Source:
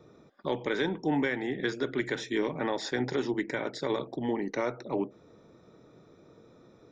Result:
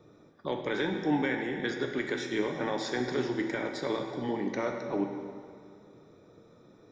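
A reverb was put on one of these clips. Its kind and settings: plate-style reverb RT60 2.2 s, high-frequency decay 0.85×, DRR 3.5 dB; gain -2 dB

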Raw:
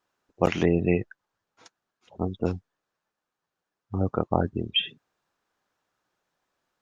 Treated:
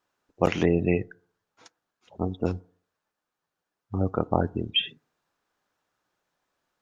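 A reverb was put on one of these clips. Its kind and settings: FDN reverb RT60 0.53 s, low-frequency decay 0.9×, high-frequency decay 0.3×, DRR 20 dB

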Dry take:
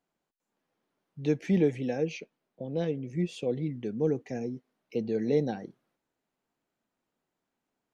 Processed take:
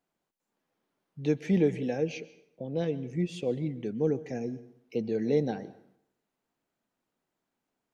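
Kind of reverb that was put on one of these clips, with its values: plate-style reverb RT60 0.7 s, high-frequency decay 0.8×, pre-delay 0.11 s, DRR 17.5 dB

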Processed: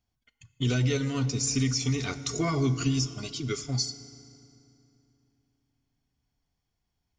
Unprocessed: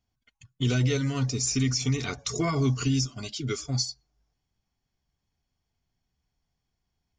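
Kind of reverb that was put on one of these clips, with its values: FDN reverb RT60 2.8 s, low-frequency decay 1.25×, high-frequency decay 0.75×, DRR 12.5 dB; gain -1 dB

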